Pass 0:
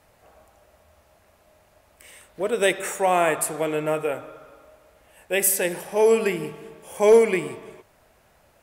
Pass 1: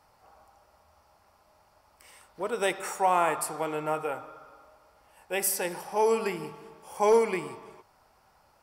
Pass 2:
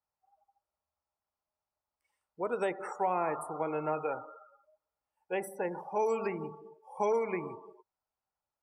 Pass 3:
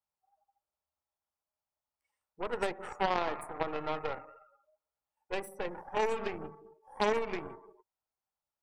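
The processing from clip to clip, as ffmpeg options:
-af "superequalizer=9b=2.82:10b=2.24:14b=2.24,volume=-7.5dB"
-filter_complex "[0:a]acrossover=split=590|1700[a][b][c];[a]acompressor=threshold=-30dB:ratio=4[d];[b]acompressor=threshold=-33dB:ratio=4[e];[c]acompressor=threshold=-44dB:ratio=4[f];[d][e][f]amix=inputs=3:normalize=0,afftdn=nr=30:nf=-41,volume=-1dB"
-af "aeval=exprs='0.126*(cos(1*acos(clip(val(0)/0.126,-1,1)))-cos(1*PI/2))+0.0158*(cos(3*acos(clip(val(0)/0.126,-1,1)))-cos(3*PI/2))+0.0562*(cos(4*acos(clip(val(0)/0.126,-1,1)))-cos(4*PI/2))+0.0447*(cos(6*acos(clip(val(0)/0.126,-1,1)))-cos(6*PI/2))':c=same"

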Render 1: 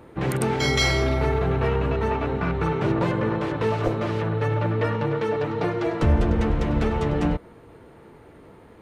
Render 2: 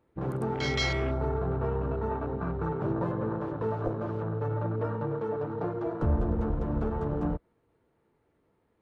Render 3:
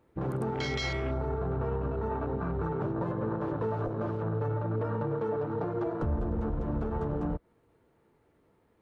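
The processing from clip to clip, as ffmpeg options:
-af "afwtdn=0.0355,volume=-7dB"
-af "alimiter=level_in=3dB:limit=-24dB:level=0:latency=1:release=189,volume=-3dB,volume=4dB"

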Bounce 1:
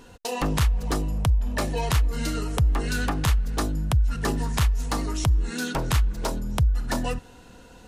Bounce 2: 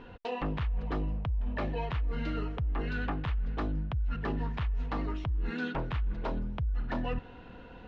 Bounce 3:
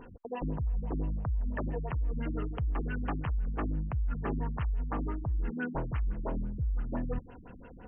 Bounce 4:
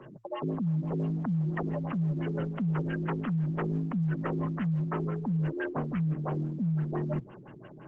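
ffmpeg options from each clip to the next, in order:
-af "areverse,acompressor=threshold=-29dB:ratio=6,areverse,lowpass=f=3.1k:w=0.5412,lowpass=f=3.1k:w=1.3066"
-af "afftfilt=real='re*lt(b*sr/1024,280*pow(3300/280,0.5+0.5*sin(2*PI*5.9*pts/sr)))':imag='im*lt(b*sr/1024,280*pow(3300/280,0.5+0.5*sin(2*PI*5.9*pts/sr)))':win_size=1024:overlap=0.75"
-af "afreqshift=110,volume=1.5dB" -ar 48000 -c:a libopus -b:a 12k

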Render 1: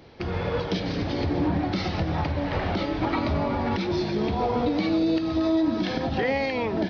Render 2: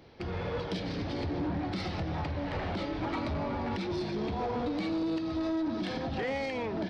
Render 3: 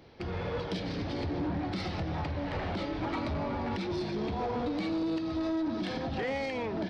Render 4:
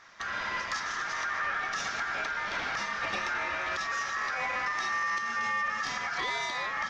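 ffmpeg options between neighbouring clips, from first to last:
-af "asoftclip=type=tanh:threshold=-21dB,volume=-5.5dB"
-af anull
-af "aeval=exprs='val(0)*sin(2*PI*1500*n/s)':c=same,equalizer=f=5.8k:w=1.2:g=6.5,volume=3dB"

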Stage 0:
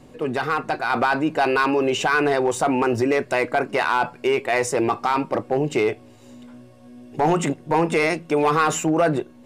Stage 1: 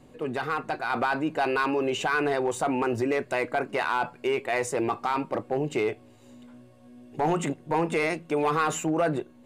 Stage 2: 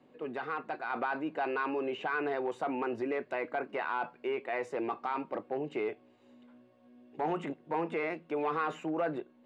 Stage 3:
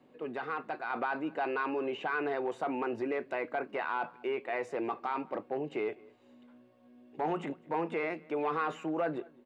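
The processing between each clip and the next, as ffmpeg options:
-af "equalizer=f=5.4k:t=o:w=0.22:g=-6,volume=-6dB"
-filter_complex "[0:a]acrossover=split=170 4200:gain=0.1 1 0.1[a][b][c];[a][b][c]amix=inputs=3:normalize=0,acrossover=split=2900[d][e];[e]acompressor=threshold=-48dB:ratio=4:attack=1:release=60[f];[d][f]amix=inputs=2:normalize=0,volume=-7dB"
-filter_complex "[0:a]asplit=2[a][b];[b]adelay=204.1,volume=-24dB,highshelf=f=4k:g=-4.59[c];[a][c]amix=inputs=2:normalize=0"

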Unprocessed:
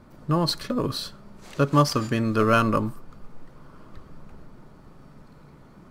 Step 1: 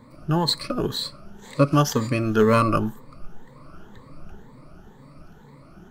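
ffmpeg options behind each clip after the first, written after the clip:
-af "afftfilt=real='re*pow(10,14/40*sin(2*PI*(1*log(max(b,1)*sr/1024/100)/log(2)-(2)*(pts-256)/sr)))':imag='im*pow(10,14/40*sin(2*PI*(1*log(max(b,1)*sr/1024/100)/log(2)-(2)*(pts-256)/sr)))':win_size=1024:overlap=0.75"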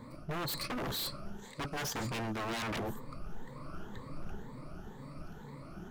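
-af "areverse,acompressor=threshold=-27dB:ratio=6,areverse,aeval=exprs='0.0266*(abs(mod(val(0)/0.0266+3,4)-2)-1)':c=same"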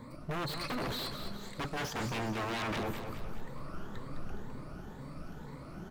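-filter_complex "[0:a]acrossover=split=4500[a][b];[b]acompressor=threshold=-48dB:ratio=4:attack=1:release=60[c];[a][c]amix=inputs=2:normalize=0,asplit=2[d][e];[e]aecho=0:1:208|416|624|832|1040|1248:0.398|0.195|0.0956|0.0468|0.023|0.0112[f];[d][f]amix=inputs=2:normalize=0,volume=1dB"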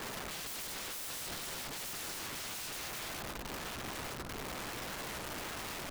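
-af "bandreject=f=50:t=h:w=6,bandreject=f=100:t=h:w=6,bandreject=f=150:t=h:w=6,bandreject=f=200:t=h:w=6,acompressor=threshold=-42dB:ratio=16,aeval=exprs='(mod(251*val(0)+1,2)-1)/251':c=same,volume=11dB"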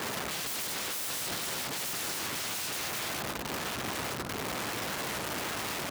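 -af "highpass=86,volume=7dB"

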